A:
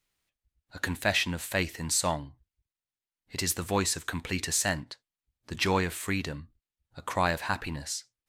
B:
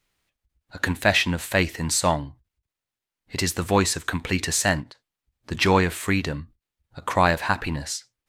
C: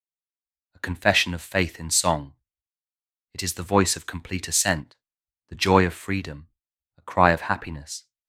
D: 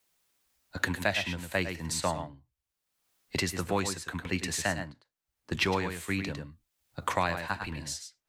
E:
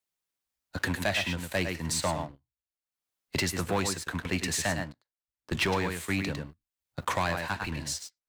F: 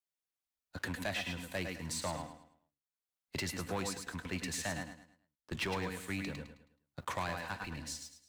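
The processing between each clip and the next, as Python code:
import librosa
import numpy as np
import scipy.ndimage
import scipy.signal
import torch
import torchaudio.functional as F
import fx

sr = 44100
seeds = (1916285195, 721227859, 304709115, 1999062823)

y1 = fx.high_shelf(x, sr, hz=4200.0, db=-5.5)
y1 = fx.end_taper(y1, sr, db_per_s=350.0)
y1 = F.gain(torch.from_numpy(y1), 8.0).numpy()
y2 = fx.band_widen(y1, sr, depth_pct=100)
y2 = F.gain(torch.from_numpy(y2), -3.5).numpy()
y3 = y2 + 10.0 ** (-9.0 / 20.0) * np.pad(y2, (int(103 * sr / 1000.0), 0))[:len(y2)]
y3 = fx.band_squash(y3, sr, depth_pct=100)
y3 = F.gain(torch.from_numpy(y3), -8.0).numpy()
y4 = fx.leveller(y3, sr, passes=3)
y4 = F.gain(torch.from_numpy(y4), -8.0).numpy()
y5 = fx.echo_feedback(y4, sr, ms=107, feedback_pct=35, wet_db=-10)
y5 = F.gain(torch.from_numpy(y5), -9.0).numpy()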